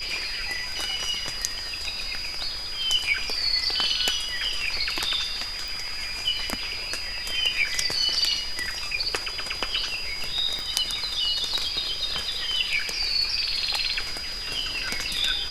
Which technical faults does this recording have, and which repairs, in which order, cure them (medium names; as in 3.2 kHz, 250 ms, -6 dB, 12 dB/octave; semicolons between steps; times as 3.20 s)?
whine 4.9 kHz -32 dBFS
5.68 s: pop
10.59 s: pop -18 dBFS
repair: de-click; band-stop 4.9 kHz, Q 30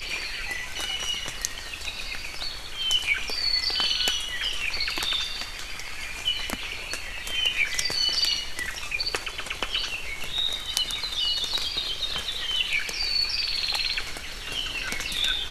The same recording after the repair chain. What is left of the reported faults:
10.59 s: pop